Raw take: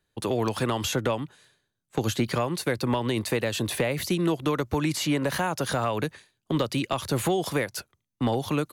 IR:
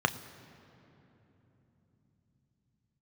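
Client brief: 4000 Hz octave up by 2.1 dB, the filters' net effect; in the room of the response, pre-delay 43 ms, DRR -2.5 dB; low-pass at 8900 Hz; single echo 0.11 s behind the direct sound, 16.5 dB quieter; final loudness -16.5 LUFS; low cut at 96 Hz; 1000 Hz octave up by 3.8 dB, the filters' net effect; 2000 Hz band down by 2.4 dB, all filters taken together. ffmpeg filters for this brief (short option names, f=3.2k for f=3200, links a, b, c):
-filter_complex "[0:a]highpass=96,lowpass=8.9k,equalizer=f=1k:t=o:g=6,equalizer=f=2k:t=o:g=-6.5,equalizer=f=4k:t=o:g=4.5,aecho=1:1:110:0.15,asplit=2[a][b];[1:a]atrim=start_sample=2205,adelay=43[c];[b][c]afir=irnorm=-1:irlink=0,volume=-8.5dB[d];[a][d]amix=inputs=2:normalize=0,volume=5.5dB"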